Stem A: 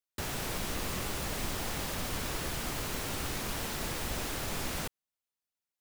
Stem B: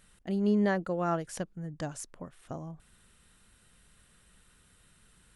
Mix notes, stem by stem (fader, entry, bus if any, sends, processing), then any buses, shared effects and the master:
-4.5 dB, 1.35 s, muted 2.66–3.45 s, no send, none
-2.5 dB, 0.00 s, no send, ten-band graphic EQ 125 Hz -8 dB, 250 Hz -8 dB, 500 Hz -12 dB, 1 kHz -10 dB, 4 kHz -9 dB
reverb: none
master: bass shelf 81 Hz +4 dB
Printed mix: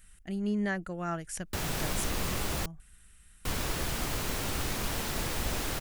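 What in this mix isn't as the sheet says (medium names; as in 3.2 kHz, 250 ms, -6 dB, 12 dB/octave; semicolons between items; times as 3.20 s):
stem A -4.5 dB -> +2.0 dB; stem B -2.5 dB -> +6.0 dB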